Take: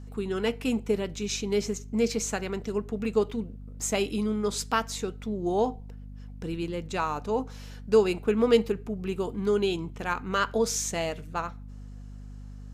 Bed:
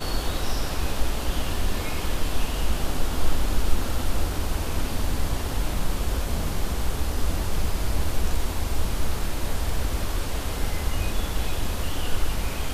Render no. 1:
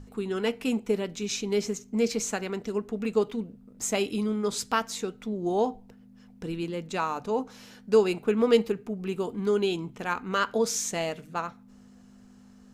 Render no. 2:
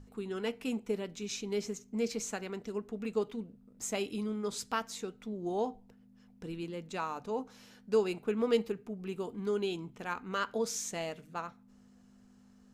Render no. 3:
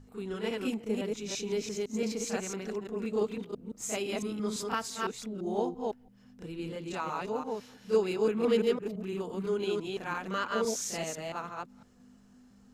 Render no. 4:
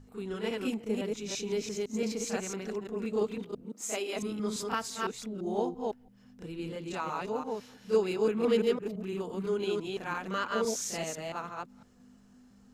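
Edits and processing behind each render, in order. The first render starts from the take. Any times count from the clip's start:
notches 50/100/150 Hz
gain -7.5 dB
reverse delay 0.169 s, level -1.5 dB; reverse echo 32 ms -9 dB
3.63–4.15 HPF 140 Hz -> 350 Hz 24 dB/oct

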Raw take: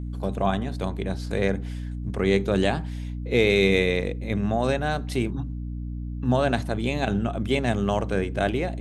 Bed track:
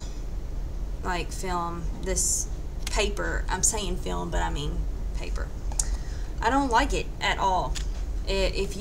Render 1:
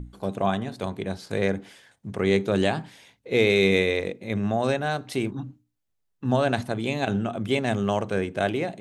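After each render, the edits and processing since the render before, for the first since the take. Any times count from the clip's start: notches 60/120/180/240/300 Hz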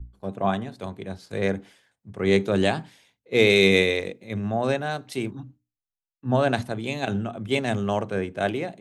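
three-band expander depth 70%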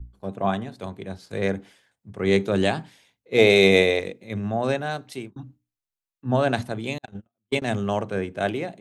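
3.38–3.99 bell 680 Hz +9.5 dB; 4.9–5.36 fade out equal-power; 6.98–7.62 gate -24 dBFS, range -50 dB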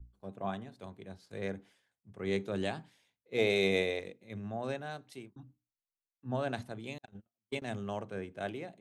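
gain -13 dB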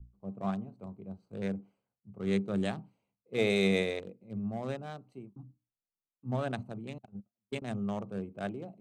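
Wiener smoothing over 25 samples; thirty-one-band EQ 125 Hz +4 dB, 200 Hz +8 dB, 1250 Hz +5 dB, 8000 Hz +7 dB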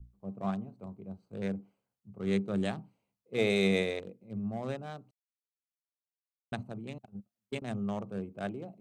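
5.11–6.52 mute

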